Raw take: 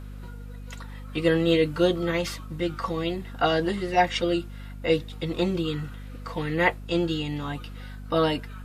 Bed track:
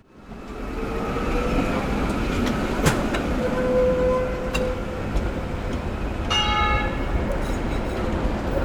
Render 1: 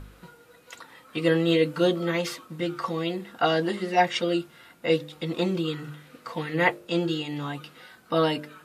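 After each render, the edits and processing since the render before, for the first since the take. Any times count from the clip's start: de-hum 50 Hz, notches 12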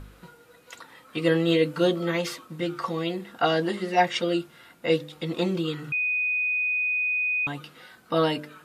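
5.92–7.47 bleep 2490 Hz -22.5 dBFS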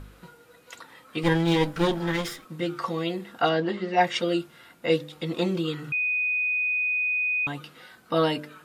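1.23–2.45 minimum comb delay 0.56 ms; 3.49–4.01 air absorption 140 m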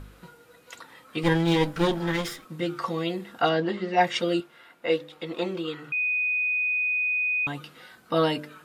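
4.4–5.97 tone controls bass -12 dB, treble -8 dB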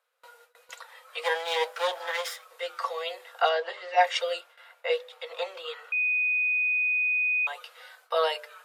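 steep high-pass 480 Hz 72 dB/oct; gate with hold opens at -44 dBFS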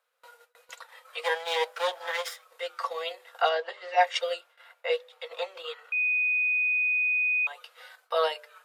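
transient shaper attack -1 dB, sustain -6 dB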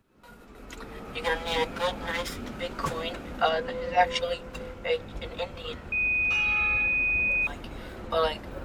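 add bed track -15 dB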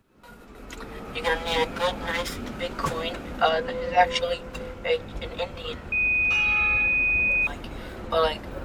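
gain +3 dB

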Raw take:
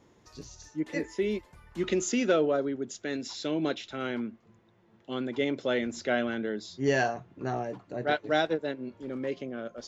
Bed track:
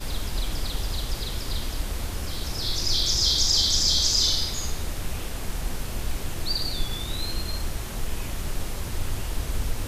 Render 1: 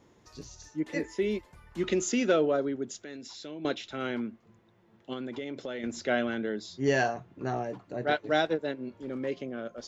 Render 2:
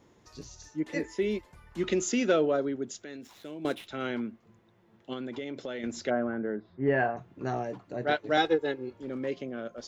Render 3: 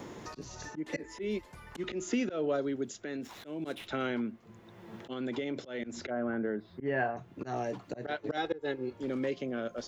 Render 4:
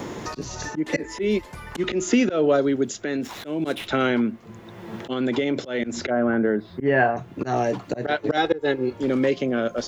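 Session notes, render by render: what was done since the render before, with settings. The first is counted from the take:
2.99–3.65 compressor 2:1, threshold -46 dBFS; 5.13–5.84 compressor 10:1, threshold -32 dBFS
3.21–3.87 median filter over 9 samples; 6.09–7.16 LPF 1300 Hz -> 2400 Hz 24 dB/oct; 8.37–8.93 comb 2.4 ms, depth 95%
auto swell 0.227 s; three-band squash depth 70%
gain +12 dB

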